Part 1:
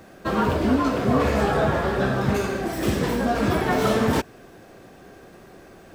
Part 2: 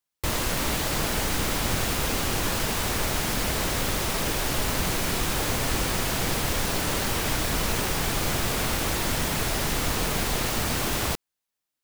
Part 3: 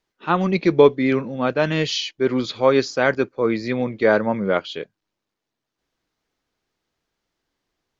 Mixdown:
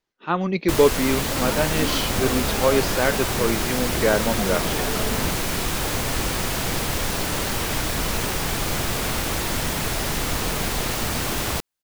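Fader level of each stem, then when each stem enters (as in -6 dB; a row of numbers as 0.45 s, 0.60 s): -9.0 dB, +1.5 dB, -3.5 dB; 1.10 s, 0.45 s, 0.00 s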